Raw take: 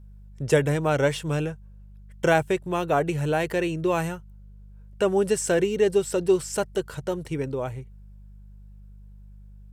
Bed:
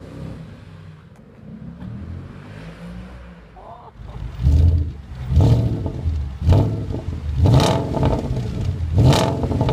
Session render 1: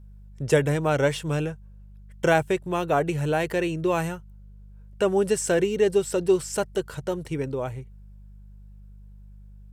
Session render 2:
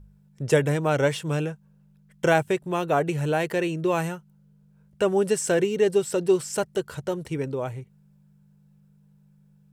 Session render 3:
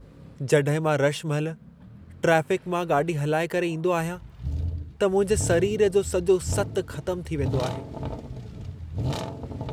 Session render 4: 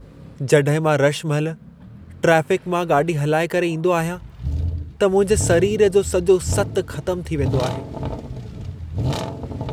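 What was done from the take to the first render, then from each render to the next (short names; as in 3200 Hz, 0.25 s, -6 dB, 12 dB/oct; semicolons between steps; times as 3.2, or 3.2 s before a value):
nothing audible
de-hum 50 Hz, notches 2
add bed -14.5 dB
gain +5.5 dB; limiter -2 dBFS, peak gain reduction 1 dB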